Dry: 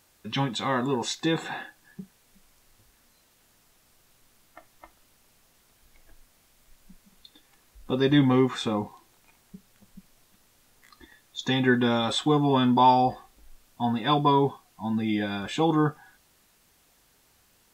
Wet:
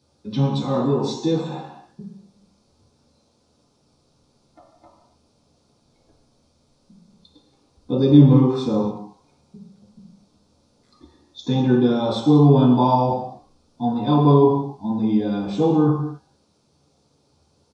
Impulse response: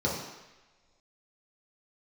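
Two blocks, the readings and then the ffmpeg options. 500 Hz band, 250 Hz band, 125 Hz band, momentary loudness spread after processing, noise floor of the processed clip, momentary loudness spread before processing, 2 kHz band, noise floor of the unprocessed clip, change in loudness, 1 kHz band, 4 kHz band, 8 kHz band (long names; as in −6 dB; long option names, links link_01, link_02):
+6.5 dB, +7.5 dB, +11.0 dB, 14 LU, −64 dBFS, 13 LU, below −10 dB, −63 dBFS, +6.0 dB, 0.0 dB, −3.5 dB, can't be measured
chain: -filter_complex "[0:a]equalizer=frequency=1900:width_type=o:width=0.63:gain=-13.5,asplit=2[link_01][link_02];[link_02]adelay=14,volume=-13.5dB[link_03];[link_01][link_03]amix=inputs=2:normalize=0[link_04];[1:a]atrim=start_sample=2205,afade=type=out:start_time=0.35:duration=0.01,atrim=end_sample=15876[link_05];[link_04][link_05]afir=irnorm=-1:irlink=0,aresample=22050,aresample=44100,volume=-9dB"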